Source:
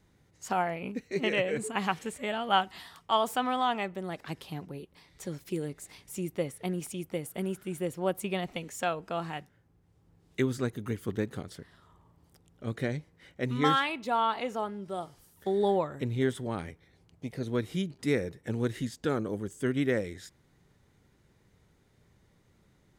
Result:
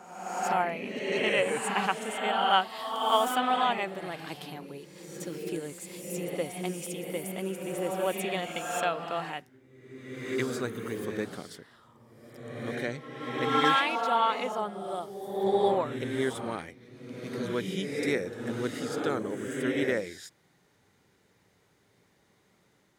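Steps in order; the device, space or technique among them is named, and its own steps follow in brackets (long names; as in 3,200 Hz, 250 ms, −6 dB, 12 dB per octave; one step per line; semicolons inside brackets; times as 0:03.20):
ghost voice (reversed playback; convolution reverb RT60 1.4 s, pre-delay 45 ms, DRR 2 dB; reversed playback; high-pass filter 420 Hz 6 dB per octave)
level +2 dB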